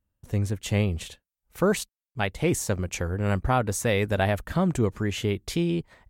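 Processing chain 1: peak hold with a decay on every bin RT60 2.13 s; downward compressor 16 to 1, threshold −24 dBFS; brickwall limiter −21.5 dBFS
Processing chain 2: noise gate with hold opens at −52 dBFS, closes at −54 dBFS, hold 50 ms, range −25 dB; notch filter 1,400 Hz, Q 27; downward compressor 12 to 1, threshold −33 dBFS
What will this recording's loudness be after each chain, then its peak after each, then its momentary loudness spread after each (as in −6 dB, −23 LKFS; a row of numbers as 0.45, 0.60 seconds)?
−32.0, −38.5 LKFS; −21.5, −22.0 dBFS; 2, 6 LU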